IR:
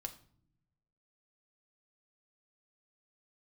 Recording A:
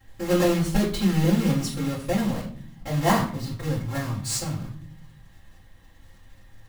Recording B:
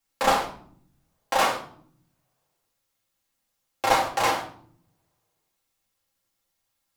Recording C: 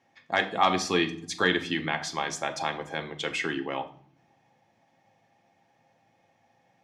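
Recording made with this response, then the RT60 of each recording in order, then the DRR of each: C; not exponential, not exponential, not exponential; -11.0, -4.5, 5.0 dB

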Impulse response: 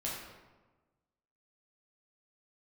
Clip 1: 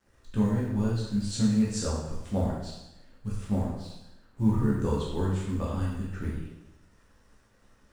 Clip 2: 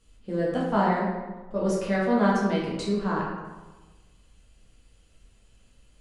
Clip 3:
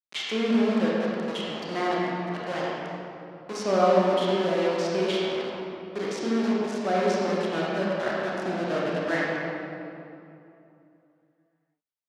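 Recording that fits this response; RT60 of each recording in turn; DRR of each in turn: 2; 0.90, 1.3, 2.8 s; -6.0, -6.0, -6.0 dB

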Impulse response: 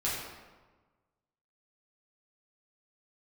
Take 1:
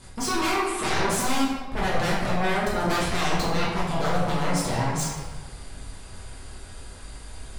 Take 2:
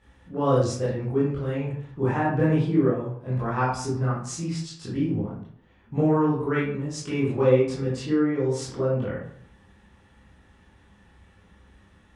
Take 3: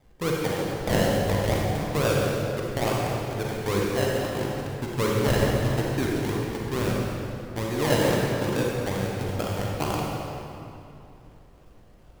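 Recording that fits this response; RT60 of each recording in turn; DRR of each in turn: 1; 1.3, 0.60, 2.8 s; -8.0, -9.5, -3.5 dB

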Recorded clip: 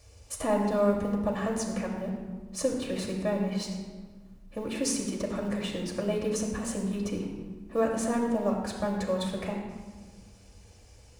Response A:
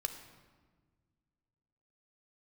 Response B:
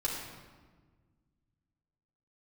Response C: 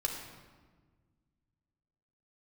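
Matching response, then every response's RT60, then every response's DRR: C; 1.5, 1.5, 1.5 s; 5.5, -6.0, -1.0 dB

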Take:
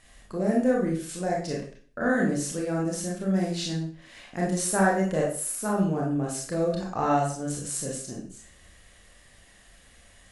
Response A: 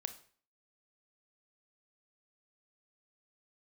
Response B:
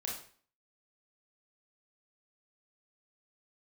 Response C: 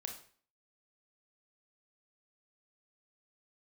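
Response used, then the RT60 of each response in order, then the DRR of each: B; 0.45, 0.45, 0.45 s; 8.5, -3.5, 2.5 dB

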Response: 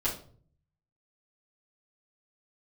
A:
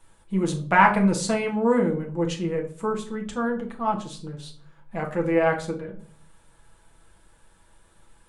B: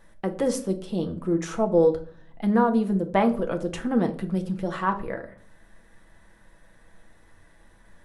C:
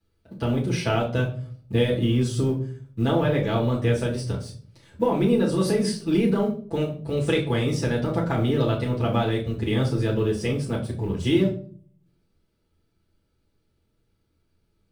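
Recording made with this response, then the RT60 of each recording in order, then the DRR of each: C; 0.50, 0.50, 0.50 s; -0.5, 4.5, -10.0 dB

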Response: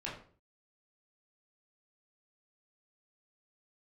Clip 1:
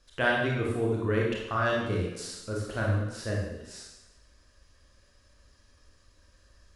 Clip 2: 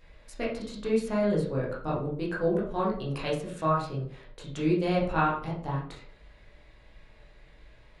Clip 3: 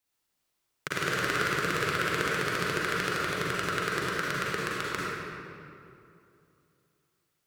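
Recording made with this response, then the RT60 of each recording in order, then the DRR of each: 2; 0.95, 0.45, 2.7 s; -3.5, -6.5, -6.5 dB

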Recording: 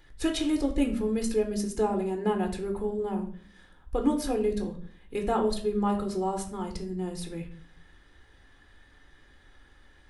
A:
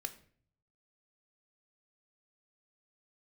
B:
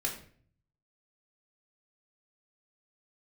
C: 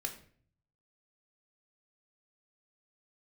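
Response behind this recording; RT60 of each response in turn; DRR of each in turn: C; 0.50, 0.50, 0.50 s; 7.5, -2.0, 2.5 dB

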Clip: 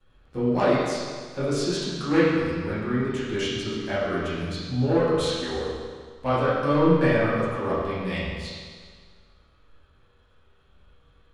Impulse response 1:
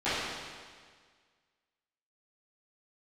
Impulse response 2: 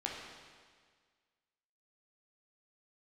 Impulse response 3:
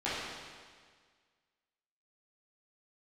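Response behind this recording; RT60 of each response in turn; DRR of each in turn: 3; 1.7, 1.7, 1.7 s; -17.5, -2.5, -12.0 dB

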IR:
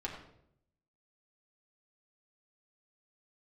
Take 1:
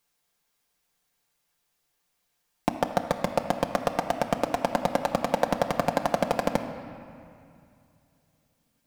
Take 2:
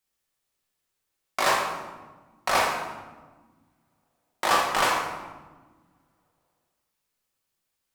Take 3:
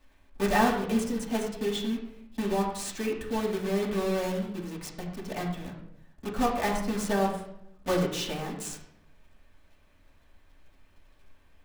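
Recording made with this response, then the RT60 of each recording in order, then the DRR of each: 3; 2.4, 1.3, 0.70 s; 2.5, -2.5, -4.0 dB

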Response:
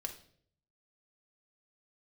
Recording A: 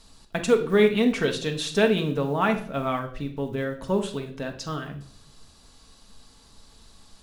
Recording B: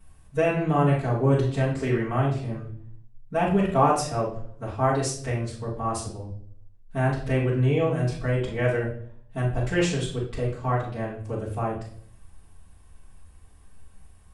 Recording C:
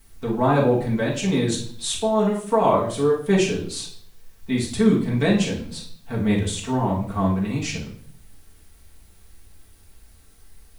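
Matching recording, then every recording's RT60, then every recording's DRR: A; not exponential, not exponential, not exponential; 3.5, -9.5, -4.5 dB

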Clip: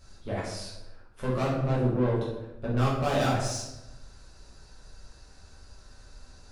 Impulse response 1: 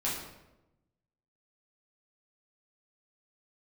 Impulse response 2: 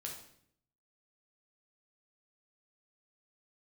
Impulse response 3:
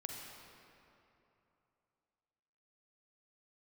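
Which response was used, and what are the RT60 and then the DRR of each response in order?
1; 0.95, 0.65, 3.0 s; -7.5, -1.0, 0.5 dB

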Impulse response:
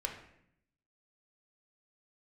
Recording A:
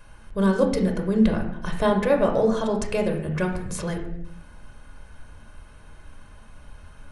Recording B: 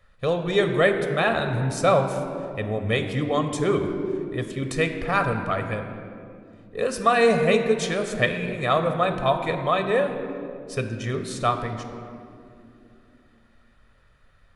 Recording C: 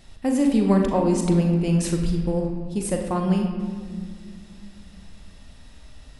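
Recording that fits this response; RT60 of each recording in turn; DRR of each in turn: A; 0.70, 2.7, 2.1 s; 1.5, 6.0, 2.0 dB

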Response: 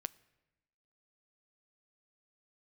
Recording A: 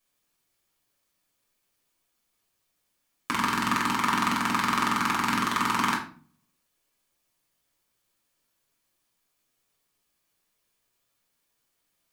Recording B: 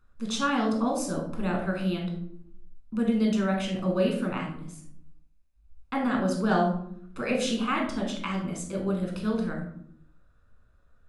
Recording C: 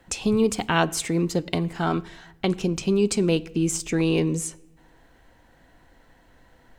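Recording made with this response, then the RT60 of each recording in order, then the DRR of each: C; 0.40, 0.75, 1.0 s; -3.0, 0.0, 16.5 dB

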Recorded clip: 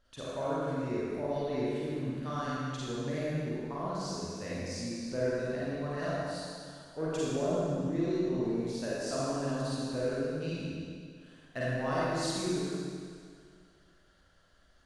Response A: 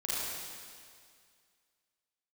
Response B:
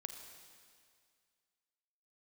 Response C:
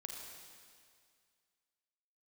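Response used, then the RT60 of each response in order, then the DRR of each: A; 2.1, 2.1, 2.1 s; -9.0, 5.5, 0.5 dB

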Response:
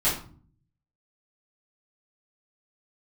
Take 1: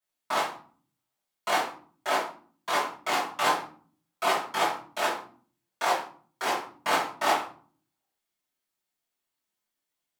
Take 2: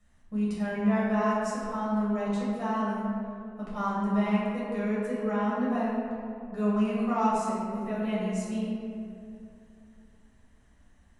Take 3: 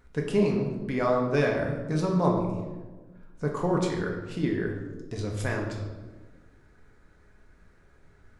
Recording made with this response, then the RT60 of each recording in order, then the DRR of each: 1; 0.45, 2.6, 1.3 s; -11.0, -8.5, -0.5 dB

